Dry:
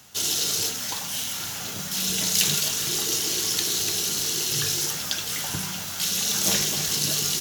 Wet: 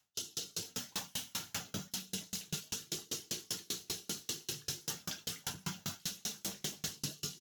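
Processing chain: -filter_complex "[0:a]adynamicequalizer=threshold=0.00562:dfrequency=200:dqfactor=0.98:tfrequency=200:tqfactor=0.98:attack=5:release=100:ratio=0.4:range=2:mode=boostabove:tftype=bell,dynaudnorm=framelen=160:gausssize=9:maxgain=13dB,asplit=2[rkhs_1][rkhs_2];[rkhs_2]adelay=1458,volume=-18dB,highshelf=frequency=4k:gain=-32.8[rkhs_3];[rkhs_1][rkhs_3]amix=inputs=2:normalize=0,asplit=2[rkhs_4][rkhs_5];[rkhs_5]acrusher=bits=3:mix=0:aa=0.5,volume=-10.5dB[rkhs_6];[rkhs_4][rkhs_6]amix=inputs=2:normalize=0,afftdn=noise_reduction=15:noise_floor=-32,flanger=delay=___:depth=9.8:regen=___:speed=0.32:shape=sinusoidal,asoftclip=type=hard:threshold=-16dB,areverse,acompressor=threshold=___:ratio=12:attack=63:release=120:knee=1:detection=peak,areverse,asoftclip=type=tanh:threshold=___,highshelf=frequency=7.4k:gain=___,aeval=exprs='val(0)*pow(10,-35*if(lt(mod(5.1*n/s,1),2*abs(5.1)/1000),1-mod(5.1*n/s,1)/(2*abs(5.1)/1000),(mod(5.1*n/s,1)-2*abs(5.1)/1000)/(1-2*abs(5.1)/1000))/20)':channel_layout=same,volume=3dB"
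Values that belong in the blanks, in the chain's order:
7.9, -88, -35dB, -28dB, -3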